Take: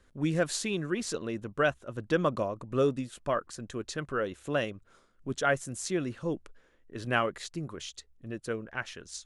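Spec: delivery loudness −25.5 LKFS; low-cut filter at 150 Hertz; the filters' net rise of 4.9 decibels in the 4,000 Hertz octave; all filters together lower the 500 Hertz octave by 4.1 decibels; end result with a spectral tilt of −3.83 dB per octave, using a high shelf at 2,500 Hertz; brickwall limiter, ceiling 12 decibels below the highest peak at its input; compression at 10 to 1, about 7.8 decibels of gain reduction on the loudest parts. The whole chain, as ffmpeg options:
ffmpeg -i in.wav -af "highpass=150,equalizer=frequency=500:width_type=o:gain=-5,highshelf=frequency=2500:gain=-3,equalizer=frequency=4000:width_type=o:gain=9,acompressor=threshold=-30dB:ratio=10,volume=15.5dB,alimiter=limit=-13.5dB:level=0:latency=1" out.wav

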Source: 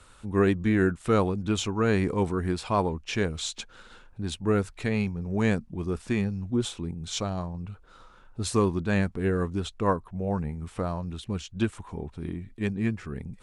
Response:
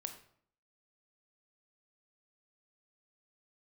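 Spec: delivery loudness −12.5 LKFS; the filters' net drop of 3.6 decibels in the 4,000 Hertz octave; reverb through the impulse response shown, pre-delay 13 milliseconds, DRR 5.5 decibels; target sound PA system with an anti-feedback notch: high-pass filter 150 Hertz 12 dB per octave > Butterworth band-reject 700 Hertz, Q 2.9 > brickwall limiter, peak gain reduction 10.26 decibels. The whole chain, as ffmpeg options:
-filter_complex "[0:a]equalizer=frequency=4000:width_type=o:gain=-4.5,asplit=2[link_01][link_02];[1:a]atrim=start_sample=2205,adelay=13[link_03];[link_02][link_03]afir=irnorm=-1:irlink=0,volume=-3dB[link_04];[link_01][link_04]amix=inputs=2:normalize=0,highpass=150,asuperstop=centerf=700:order=8:qfactor=2.9,volume=19.5dB,alimiter=limit=-1dB:level=0:latency=1"

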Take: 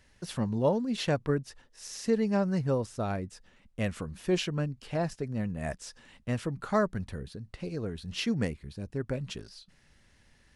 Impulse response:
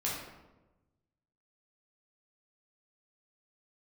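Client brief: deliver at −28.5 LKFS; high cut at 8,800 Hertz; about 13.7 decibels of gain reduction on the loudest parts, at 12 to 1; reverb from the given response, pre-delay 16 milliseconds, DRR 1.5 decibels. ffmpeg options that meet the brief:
-filter_complex "[0:a]lowpass=8800,acompressor=threshold=-35dB:ratio=12,asplit=2[link_01][link_02];[1:a]atrim=start_sample=2205,adelay=16[link_03];[link_02][link_03]afir=irnorm=-1:irlink=0,volume=-6.5dB[link_04];[link_01][link_04]amix=inputs=2:normalize=0,volume=10dB"

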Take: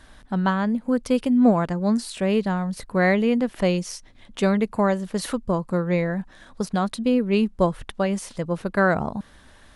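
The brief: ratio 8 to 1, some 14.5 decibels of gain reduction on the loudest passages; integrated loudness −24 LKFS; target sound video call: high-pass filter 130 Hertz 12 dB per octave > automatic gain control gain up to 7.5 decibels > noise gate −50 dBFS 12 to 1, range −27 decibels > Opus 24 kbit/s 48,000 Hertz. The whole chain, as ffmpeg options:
ffmpeg -i in.wav -af "acompressor=threshold=-28dB:ratio=8,highpass=130,dynaudnorm=maxgain=7.5dB,agate=range=-27dB:threshold=-50dB:ratio=12,volume=10dB" -ar 48000 -c:a libopus -b:a 24k out.opus

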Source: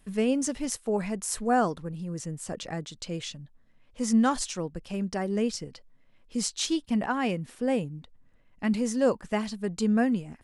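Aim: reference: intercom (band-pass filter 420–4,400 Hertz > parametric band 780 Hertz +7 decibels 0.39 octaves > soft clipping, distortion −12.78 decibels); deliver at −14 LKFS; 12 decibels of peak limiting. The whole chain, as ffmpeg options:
ffmpeg -i in.wav -af "alimiter=limit=-23.5dB:level=0:latency=1,highpass=420,lowpass=4400,equalizer=frequency=780:width_type=o:width=0.39:gain=7,asoftclip=threshold=-29dB,volume=25.5dB" out.wav

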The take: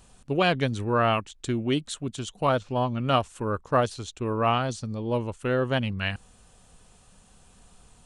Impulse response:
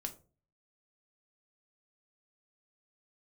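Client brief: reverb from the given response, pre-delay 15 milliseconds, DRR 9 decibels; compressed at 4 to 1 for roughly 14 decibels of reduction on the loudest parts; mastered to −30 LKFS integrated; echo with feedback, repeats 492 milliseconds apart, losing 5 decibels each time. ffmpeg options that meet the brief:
-filter_complex "[0:a]acompressor=threshold=-35dB:ratio=4,aecho=1:1:492|984|1476|1968|2460|2952|3444:0.562|0.315|0.176|0.0988|0.0553|0.031|0.0173,asplit=2[link_01][link_02];[1:a]atrim=start_sample=2205,adelay=15[link_03];[link_02][link_03]afir=irnorm=-1:irlink=0,volume=-7dB[link_04];[link_01][link_04]amix=inputs=2:normalize=0,volume=6dB"

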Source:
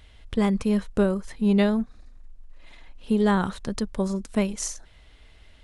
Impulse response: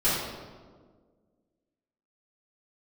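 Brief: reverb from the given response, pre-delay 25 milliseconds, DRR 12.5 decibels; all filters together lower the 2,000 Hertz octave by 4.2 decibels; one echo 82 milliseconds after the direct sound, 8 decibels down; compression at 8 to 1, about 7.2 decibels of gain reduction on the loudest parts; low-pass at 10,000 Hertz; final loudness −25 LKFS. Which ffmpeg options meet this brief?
-filter_complex "[0:a]lowpass=10000,equalizer=frequency=2000:width_type=o:gain=-5.5,acompressor=threshold=-24dB:ratio=8,aecho=1:1:82:0.398,asplit=2[link_01][link_02];[1:a]atrim=start_sample=2205,adelay=25[link_03];[link_02][link_03]afir=irnorm=-1:irlink=0,volume=-26dB[link_04];[link_01][link_04]amix=inputs=2:normalize=0,volume=5dB"

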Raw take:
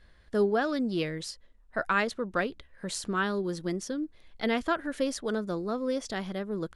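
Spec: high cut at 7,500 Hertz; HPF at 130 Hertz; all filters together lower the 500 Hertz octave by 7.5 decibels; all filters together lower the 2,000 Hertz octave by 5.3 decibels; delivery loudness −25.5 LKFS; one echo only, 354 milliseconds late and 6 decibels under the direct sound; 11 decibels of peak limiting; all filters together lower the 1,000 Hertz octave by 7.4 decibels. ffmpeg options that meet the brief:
ffmpeg -i in.wav -af "highpass=130,lowpass=7500,equalizer=frequency=500:width_type=o:gain=-8,equalizer=frequency=1000:width_type=o:gain=-7,equalizer=frequency=2000:width_type=o:gain=-3.5,alimiter=level_in=5.5dB:limit=-24dB:level=0:latency=1,volume=-5.5dB,aecho=1:1:354:0.501,volume=12.5dB" out.wav

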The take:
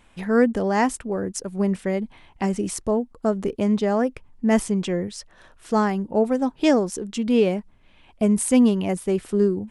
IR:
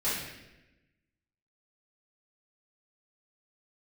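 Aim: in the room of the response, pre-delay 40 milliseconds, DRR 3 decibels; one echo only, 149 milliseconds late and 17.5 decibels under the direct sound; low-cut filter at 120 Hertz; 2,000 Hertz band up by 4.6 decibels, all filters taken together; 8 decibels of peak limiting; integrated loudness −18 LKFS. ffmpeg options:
-filter_complex "[0:a]highpass=120,equalizer=frequency=2000:width_type=o:gain=5.5,alimiter=limit=-14dB:level=0:latency=1,aecho=1:1:149:0.133,asplit=2[link_01][link_02];[1:a]atrim=start_sample=2205,adelay=40[link_03];[link_02][link_03]afir=irnorm=-1:irlink=0,volume=-12dB[link_04];[link_01][link_04]amix=inputs=2:normalize=0,volume=4.5dB"

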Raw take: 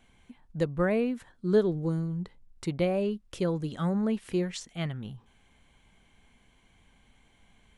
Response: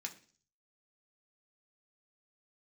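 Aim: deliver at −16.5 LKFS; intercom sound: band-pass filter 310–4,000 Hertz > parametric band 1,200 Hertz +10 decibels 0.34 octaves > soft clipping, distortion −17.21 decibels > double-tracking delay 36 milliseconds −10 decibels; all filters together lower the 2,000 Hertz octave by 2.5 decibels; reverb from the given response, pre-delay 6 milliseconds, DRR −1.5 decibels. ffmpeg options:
-filter_complex "[0:a]equalizer=frequency=2000:width_type=o:gain=-5,asplit=2[link_01][link_02];[1:a]atrim=start_sample=2205,adelay=6[link_03];[link_02][link_03]afir=irnorm=-1:irlink=0,volume=3.5dB[link_04];[link_01][link_04]amix=inputs=2:normalize=0,highpass=310,lowpass=4000,equalizer=frequency=1200:width_type=o:width=0.34:gain=10,asoftclip=threshold=-18.5dB,asplit=2[link_05][link_06];[link_06]adelay=36,volume=-10dB[link_07];[link_05][link_07]amix=inputs=2:normalize=0,volume=14.5dB"

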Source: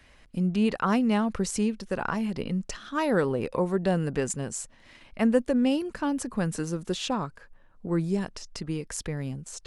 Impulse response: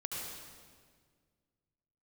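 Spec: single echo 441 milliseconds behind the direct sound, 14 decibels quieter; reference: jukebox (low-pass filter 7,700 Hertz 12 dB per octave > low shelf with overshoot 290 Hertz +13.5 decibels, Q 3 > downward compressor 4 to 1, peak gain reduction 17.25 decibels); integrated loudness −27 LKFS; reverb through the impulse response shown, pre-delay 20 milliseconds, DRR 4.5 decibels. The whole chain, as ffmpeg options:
-filter_complex "[0:a]aecho=1:1:441:0.2,asplit=2[link_01][link_02];[1:a]atrim=start_sample=2205,adelay=20[link_03];[link_02][link_03]afir=irnorm=-1:irlink=0,volume=-6dB[link_04];[link_01][link_04]amix=inputs=2:normalize=0,lowpass=7700,lowshelf=frequency=290:width_type=q:width=3:gain=13.5,acompressor=threshold=-21dB:ratio=4,volume=-4dB"

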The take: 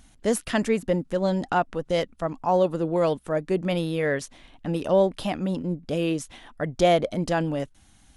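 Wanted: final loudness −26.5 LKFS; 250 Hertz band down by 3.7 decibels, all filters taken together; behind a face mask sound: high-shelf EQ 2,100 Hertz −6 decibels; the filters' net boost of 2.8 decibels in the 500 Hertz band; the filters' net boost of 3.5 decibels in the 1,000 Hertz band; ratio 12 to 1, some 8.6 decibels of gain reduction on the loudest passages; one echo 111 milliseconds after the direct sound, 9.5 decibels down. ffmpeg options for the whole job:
ffmpeg -i in.wav -af "equalizer=frequency=250:width_type=o:gain=-8,equalizer=frequency=500:width_type=o:gain=4,equalizer=frequency=1000:width_type=o:gain=5,acompressor=threshold=-20dB:ratio=12,highshelf=frequency=2100:gain=-6,aecho=1:1:111:0.335,volume=1dB" out.wav

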